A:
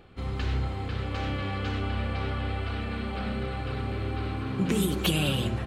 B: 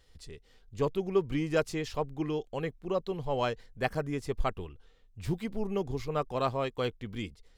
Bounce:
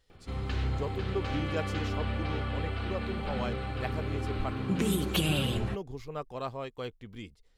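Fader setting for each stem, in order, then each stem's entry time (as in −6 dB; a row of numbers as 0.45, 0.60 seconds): −2.5, −6.5 decibels; 0.10, 0.00 seconds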